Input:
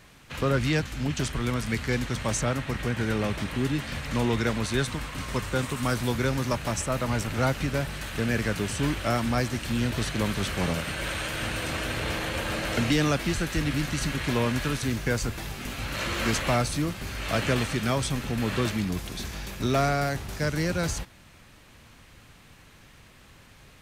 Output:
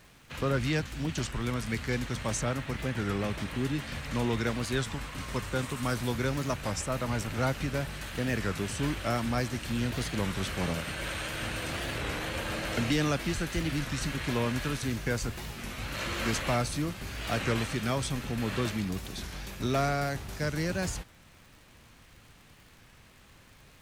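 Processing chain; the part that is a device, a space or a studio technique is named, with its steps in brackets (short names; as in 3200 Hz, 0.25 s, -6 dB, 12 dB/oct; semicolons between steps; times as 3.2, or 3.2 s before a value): warped LP (record warp 33 1/3 rpm, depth 160 cents; crackle 96/s -43 dBFS; pink noise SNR 38 dB); gain -4 dB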